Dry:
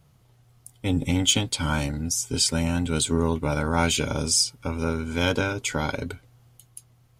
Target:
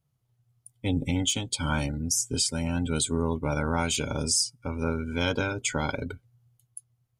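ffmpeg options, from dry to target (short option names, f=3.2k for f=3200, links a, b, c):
-af "afftdn=nr=18:nf=-38,highshelf=f=7.1k:g=6.5,alimiter=limit=-12dB:level=0:latency=1:release=431,volume=-2dB"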